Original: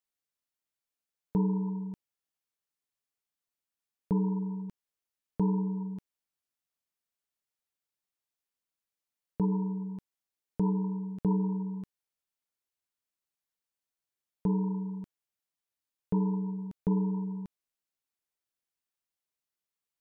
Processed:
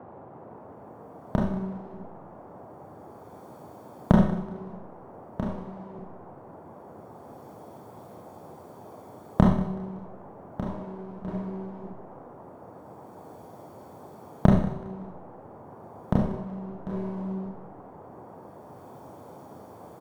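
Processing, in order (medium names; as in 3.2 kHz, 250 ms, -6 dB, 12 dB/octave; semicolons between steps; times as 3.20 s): comb filter that takes the minimum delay 0.89 ms; recorder AGC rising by 17 dB/s; 5.45–5.95 s: bass shelf 470 Hz -9 dB; 16.93–17.33 s: waveshaping leveller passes 1; chorus voices 2, 0.31 Hz, delay 30 ms, depth 4 ms; on a send: feedback delay 188 ms, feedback 35%, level -17 dB; on the sum: Schroeder reverb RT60 0.57 s, combs from 30 ms, DRR 0 dB; band noise 87–910 Hz -43 dBFS; trim -3 dB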